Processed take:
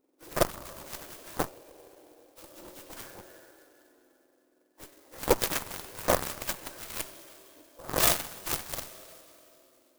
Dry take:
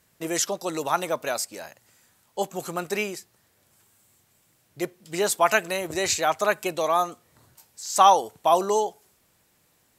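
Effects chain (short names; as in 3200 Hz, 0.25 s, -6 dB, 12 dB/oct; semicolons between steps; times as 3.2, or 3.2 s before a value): spectrum mirrored in octaves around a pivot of 2000 Hz; plate-style reverb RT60 3.3 s, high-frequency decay 0.8×, pre-delay 0 ms, DRR 3.5 dB; 1.48–2.44 compressor, threshold -34 dBFS, peak gain reduction 8 dB; added harmonics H 3 -32 dB, 4 -12 dB, 5 -30 dB, 7 -14 dB, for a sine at -7 dBFS; clock jitter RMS 0.078 ms; gain -3.5 dB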